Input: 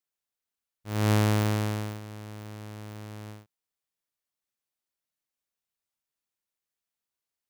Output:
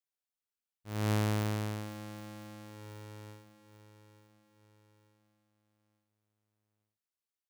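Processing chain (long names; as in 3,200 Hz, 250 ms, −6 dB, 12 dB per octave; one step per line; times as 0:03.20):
repeating echo 881 ms, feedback 44%, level −14.5 dB
level −7 dB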